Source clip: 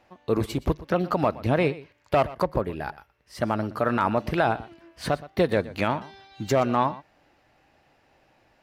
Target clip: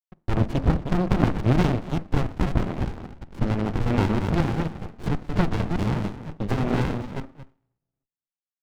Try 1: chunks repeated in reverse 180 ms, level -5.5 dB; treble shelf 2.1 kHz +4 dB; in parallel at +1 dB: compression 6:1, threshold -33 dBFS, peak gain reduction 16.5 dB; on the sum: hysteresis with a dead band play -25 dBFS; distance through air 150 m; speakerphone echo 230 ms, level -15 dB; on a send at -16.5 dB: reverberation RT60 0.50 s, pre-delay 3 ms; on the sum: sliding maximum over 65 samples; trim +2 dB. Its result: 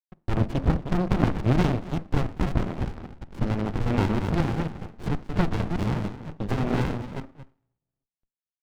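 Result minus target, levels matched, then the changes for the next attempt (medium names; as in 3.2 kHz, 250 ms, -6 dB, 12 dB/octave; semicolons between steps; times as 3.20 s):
compression: peak gain reduction +6 dB
change: compression 6:1, threshold -26 dBFS, peak gain reduction 10.5 dB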